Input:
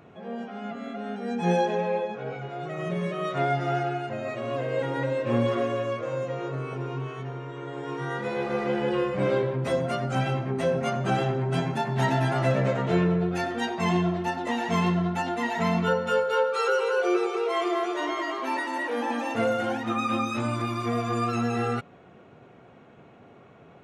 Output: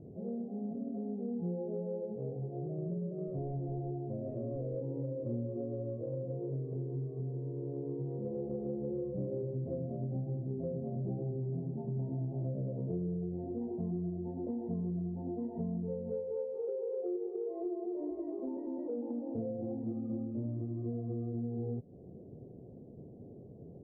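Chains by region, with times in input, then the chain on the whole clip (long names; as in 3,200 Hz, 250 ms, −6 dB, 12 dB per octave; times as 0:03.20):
0:03.27–0:04.76: high-shelf EQ 2,900 Hz +12 dB + gain into a clipping stage and back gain 23.5 dB
whole clip: inverse Chebyshev low-pass filter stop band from 1,300 Hz, stop band 50 dB; low-shelf EQ 97 Hz +8.5 dB; downward compressor 5 to 1, threshold −37 dBFS; level +1.5 dB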